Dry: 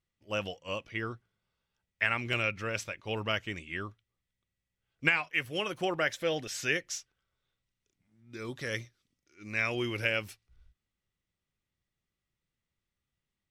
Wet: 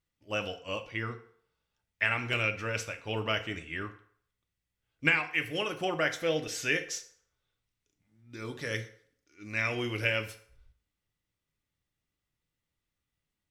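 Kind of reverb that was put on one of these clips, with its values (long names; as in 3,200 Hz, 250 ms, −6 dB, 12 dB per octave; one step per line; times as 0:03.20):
feedback delay network reverb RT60 0.59 s, low-frequency decay 0.7×, high-frequency decay 0.75×, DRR 6 dB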